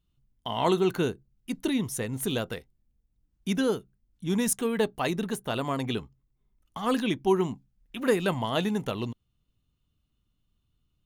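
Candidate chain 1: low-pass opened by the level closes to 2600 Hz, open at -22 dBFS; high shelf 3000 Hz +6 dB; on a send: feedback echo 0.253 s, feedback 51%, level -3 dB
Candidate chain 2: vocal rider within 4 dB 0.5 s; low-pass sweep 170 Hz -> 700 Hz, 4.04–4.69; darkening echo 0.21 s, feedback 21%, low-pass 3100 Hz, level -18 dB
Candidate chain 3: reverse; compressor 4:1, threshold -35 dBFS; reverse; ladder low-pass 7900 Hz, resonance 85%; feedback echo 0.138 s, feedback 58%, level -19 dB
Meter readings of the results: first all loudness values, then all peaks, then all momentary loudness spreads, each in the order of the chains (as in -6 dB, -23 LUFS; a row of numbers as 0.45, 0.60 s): -26.5, -28.5, -50.0 LUFS; -8.5, -12.5, -27.0 dBFS; 14, 16, 13 LU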